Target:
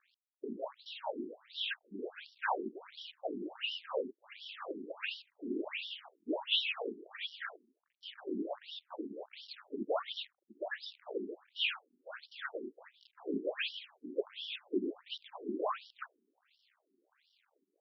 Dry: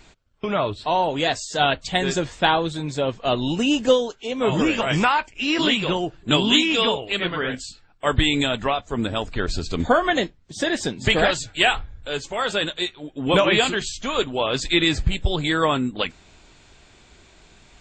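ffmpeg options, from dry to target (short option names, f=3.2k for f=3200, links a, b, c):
-af "afftfilt=real='hypot(re,im)*cos(2*PI*random(0))':imag='hypot(re,im)*sin(2*PI*random(1))':win_size=512:overlap=0.75,acrusher=bits=7:dc=4:mix=0:aa=0.000001,afftfilt=real='re*between(b*sr/1024,280*pow(4100/280,0.5+0.5*sin(2*PI*1.4*pts/sr))/1.41,280*pow(4100/280,0.5+0.5*sin(2*PI*1.4*pts/sr))*1.41)':imag='im*between(b*sr/1024,280*pow(4100/280,0.5+0.5*sin(2*PI*1.4*pts/sr))/1.41,280*pow(4100/280,0.5+0.5*sin(2*PI*1.4*pts/sr))*1.41)':win_size=1024:overlap=0.75,volume=-5.5dB"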